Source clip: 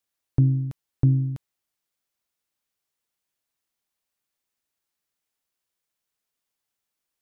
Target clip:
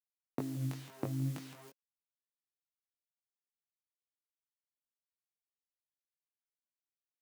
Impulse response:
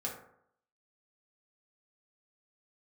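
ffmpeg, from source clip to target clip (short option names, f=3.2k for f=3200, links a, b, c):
-filter_complex "[0:a]asplit=2[a][b];[b]alimiter=limit=-20dB:level=0:latency=1:release=71,volume=-2.5dB[c];[a][c]amix=inputs=2:normalize=0,equalizer=f=280:t=o:w=1.7:g=-8,bandreject=f=480:w=12,aecho=1:1:166|332:0.2|0.0439,acompressor=threshold=-24dB:ratio=12,aeval=exprs='0.178*(cos(1*acos(clip(val(0)/0.178,-1,1)))-cos(1*PI/2))+0.00224*(cos(8*acos(clip(val(0)/0.178,-1,1)))-cos(8*PI/2))':c=same,acrusher=bits=8:mix=0:aa=0.000001,flanger=delay=19.5:depth=2.3:speed=2.1,highpass=f=210:w=0.5412,highpass=f=210:w=1.3066,flanger=delay=1.3:depth=8.3:regen=67:speed=0.53:shape=sinusoidal,volume=10.5dB"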